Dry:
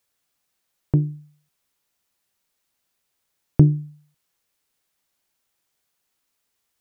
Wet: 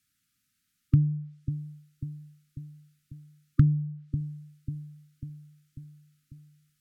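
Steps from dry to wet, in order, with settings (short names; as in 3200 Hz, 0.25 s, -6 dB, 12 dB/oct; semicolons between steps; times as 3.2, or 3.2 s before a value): treble ducked by the level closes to 330 Hz, closed at -19 dBFS; bell 130 Hz +9.5 dB 2.3 oct; compressor 6:1, threshold -18 dBFS, peak gain reduction 17 dB; brick-wall FIR band-stop 310–1200 Hz; on a send: analogue delay 0.544 s, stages 2048, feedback 58%, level -11 dB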